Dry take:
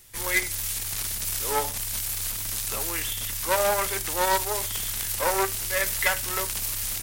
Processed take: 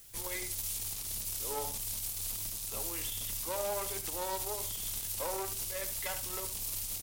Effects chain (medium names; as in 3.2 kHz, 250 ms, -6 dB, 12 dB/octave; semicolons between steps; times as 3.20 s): peaking EQ 1.7 kHz -9.5 dB 1.1 oct; peak limiter -20.5 dBFS, peak gain reduction 8.5 dB; added noise blue -51 dBFS; on a send: delay 74 ms -11.5 dB; on the sum: trim -5.5 dB